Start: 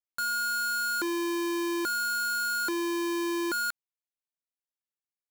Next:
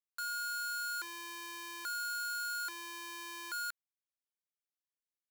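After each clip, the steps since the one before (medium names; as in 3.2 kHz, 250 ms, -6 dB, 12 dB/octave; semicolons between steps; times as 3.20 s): high-pass 1.1 kHz 12 dB/octave; trim -7.5 dB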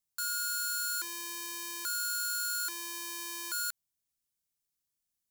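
tone controls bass +13 dB, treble +11 dB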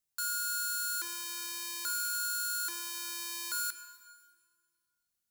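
plate-style reverb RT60 1.9 s, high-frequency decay 0.85×, DRR 11 dB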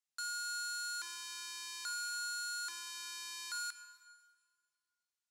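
band-pass 770–7600 Hz; trim -3.5 dB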